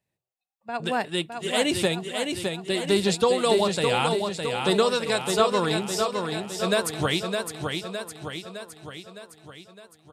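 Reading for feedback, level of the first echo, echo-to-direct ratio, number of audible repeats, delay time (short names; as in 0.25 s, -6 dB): 56%, -5.0 dB, -3.5 dB, 6, 0.611 s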